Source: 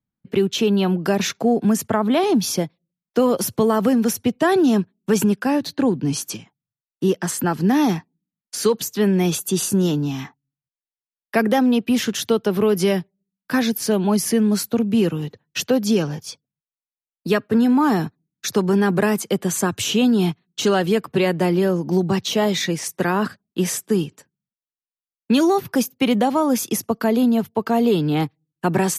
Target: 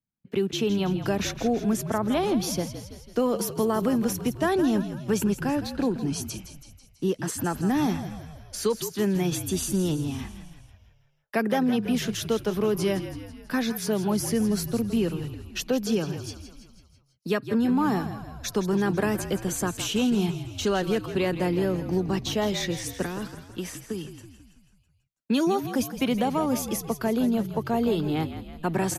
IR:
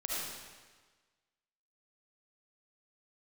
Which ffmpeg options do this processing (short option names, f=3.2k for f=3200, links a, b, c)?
-filter_complex "[0:a]asettb=1/sr,asplit=3[a][b][c];[a]atrim=end=23.054[d];[b]atrim=start=23.05:end=24.05,asetpts=PTS-STARTPTS,afade=t=in:d=0.004:c=qsin,afade=t=out:st=0.996:d=0.004:c=qsin,acrossover=split=520|2700[e][f][g];[e]acompressor=threshold=-25dB:ratio=4[h];[f]acompressor=threshold=-35dB:ratio=4[i];[g]acompressor=threshold=-34dB:ratio=4[j];[h][i][j]amix=inputs=3:normalize=0[k];[c]atrim=start=24.046[l];[d][k]acrossfade=d=0.004:c1=hsin:c2=qsin[m];[m][l]acrossfade=d=0.004:c1=qsin:c2=hsin,asplit=2[n][o];[o]asplit=6[p][q][r][s][t][u];[p]adelay=164,afreqshift=-47,volume=-11dB[v];[q]adelay=328,afreqshift=-94,volume=-15.9dB[w];[r]adelay=492,afreqshift=-141,volume=-20.8dB[x];[s]adelay=656,afreqshift=-188,volume=-25.6dB[y];[t]adelay=820,afreqshift=-235,volume=-30.5dB[z];[u]adelay=984,afreqshift=-282,volume=-35.4dB[aa];[v][w][x][y][z][aa]amix=inputs=6:normalize=0[ab];[n][ab]amix=inputs=2:normalize=0,volume=-7dB"